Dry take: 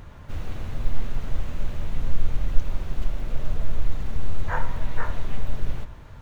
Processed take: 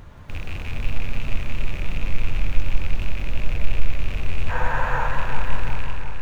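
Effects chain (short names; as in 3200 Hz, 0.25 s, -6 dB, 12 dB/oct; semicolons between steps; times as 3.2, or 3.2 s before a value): rattling part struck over -34 dBFS, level -24 dBFS; spectral freeze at 4.56, 0.51 s; warbling echo 0.178 s, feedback 76%, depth 133 cents, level -6 dB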